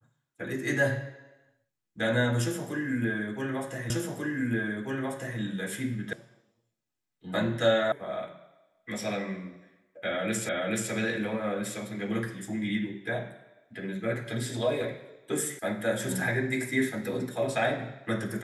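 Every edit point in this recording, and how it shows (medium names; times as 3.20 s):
3.90 s: repeat of the last 1.49 s
6.13 s: sound stops dead
7.92 s: sound stops dead
10.49 s: repeat of the last 0.43 s
15.59 s: sound stops dead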